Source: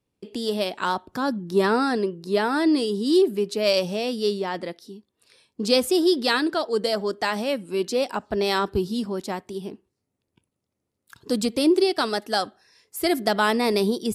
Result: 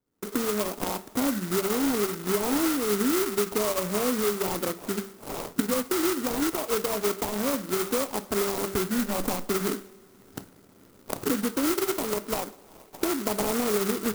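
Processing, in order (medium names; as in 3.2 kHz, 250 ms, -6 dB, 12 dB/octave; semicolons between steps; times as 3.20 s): 8.98–9.49 s: comb filter that takes the minimum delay 3.8 ms; recorder AGC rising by 30 dB/s; FFT filter 390 Hz 0 dB, 760 Hz -7 dB, 1.2 kHz -7 dB, 2.1 kHz -3 dB, 5 kHz 0 dB, 8.5 kHz -30 dB; low-pass that closes with the level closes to 840 Hz, closed at -16.5 dBFS; de-hum 194.7 Hz, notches 3; sample-rate reducer 1.7 kHz, jitter 20%; peaking EQ 82 Hz -9.5 dB 2.5 oct; compression 4:1, threshold -22 dBFS, peak gain reduction 7 dB; two-slope reverb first 0.42 s, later 3.2 s, from -18 dB, DRR 12 dB; sampling jitter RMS 0.097 ms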